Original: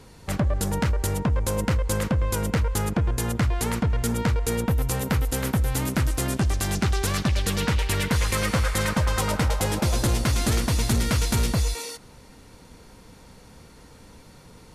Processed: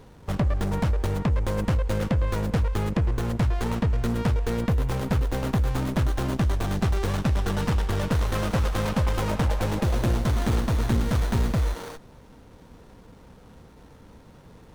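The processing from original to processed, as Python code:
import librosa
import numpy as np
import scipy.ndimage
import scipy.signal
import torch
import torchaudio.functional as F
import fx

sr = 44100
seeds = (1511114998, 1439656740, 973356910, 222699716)

y = fx.running_max(x, sr, window=17)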